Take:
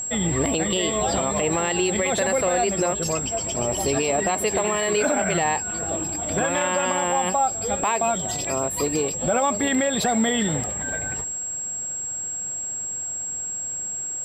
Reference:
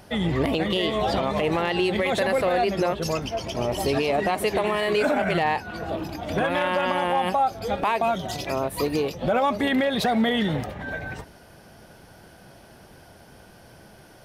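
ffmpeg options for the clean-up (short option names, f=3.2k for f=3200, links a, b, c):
-af "bandreject=f=7.6k:w=30"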